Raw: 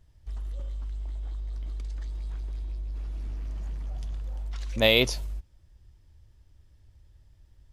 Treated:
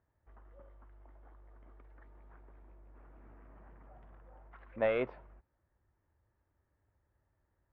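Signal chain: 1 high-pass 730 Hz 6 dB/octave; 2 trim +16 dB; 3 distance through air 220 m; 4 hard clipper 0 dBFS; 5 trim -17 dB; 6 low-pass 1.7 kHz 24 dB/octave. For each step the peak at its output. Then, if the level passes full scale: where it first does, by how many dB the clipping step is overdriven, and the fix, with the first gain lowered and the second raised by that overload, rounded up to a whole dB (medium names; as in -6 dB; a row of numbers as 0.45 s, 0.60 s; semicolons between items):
-6.0 dBFS, +10.0 dBFS, +6.5 dBFS, 0.0 dBFS, -17.0 dBFS, -20.0 dBFS; step 2, 6.5 dB; step 2 +9 dB, step 5 -10 dB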